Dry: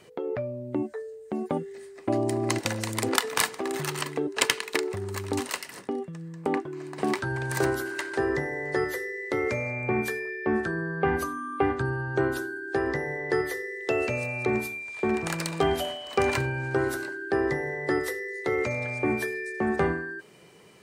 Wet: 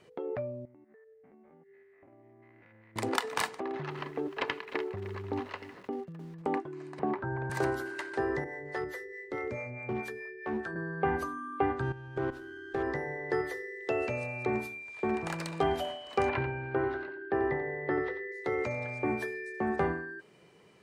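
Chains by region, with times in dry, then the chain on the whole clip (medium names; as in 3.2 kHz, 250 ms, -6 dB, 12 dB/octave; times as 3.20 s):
0.65–2.96 s: spectrogram pixelated in time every 100 ms + four-pole ladder low-pass 2.3 kHz, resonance 60% + compression 10:1, threshold -49 dBFS
3.60–6.42 s: distance through air 270 m + bit-crushed delay 304 ms, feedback 35%, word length 7-bit, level -13 dB
6.99–7.50 s: low-pass 1.4 kHz + three bands compressed up and down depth 40%
8.44–10.76 s: harmonic tremolo 4.7 Hz, crossover 500 Hz + hard clipper -22.5 dBFS
11.82–12.83 s: bass shelf 370 Hz +3.5 dB + level held to a coarse grid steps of 13 dB + sliding maximum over 5 samples
16.29–18.32 s: low-pass 3.3 kHz 24 dB/octave + delay 89 ms -10.5 dB
whole clip: low-pass 3.8 kHz 6 dB/octave; dynamic bell 820 Hz, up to +4 dB, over -39 dBFS, Q 1.6; trim -5.5 dB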